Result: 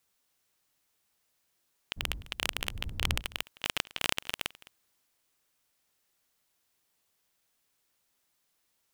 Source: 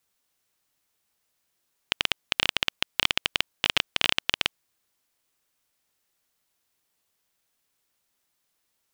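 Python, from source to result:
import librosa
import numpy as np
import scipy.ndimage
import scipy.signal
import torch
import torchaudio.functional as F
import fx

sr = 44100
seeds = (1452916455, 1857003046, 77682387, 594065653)

y = fx.dmg_wind(x, sr, seeds[0], corner_hz=84.0, level_db=-37.0, at=(1.96, 3.2), fade=0.02)
y = fx.transient(y, sr, attack_db=-11, sustain_db=1)
y = y + 10.0 ** (-20.5 / 20.0) * np.pad(y, (int(211 * sr / 1000.0), 0))[:len(y)]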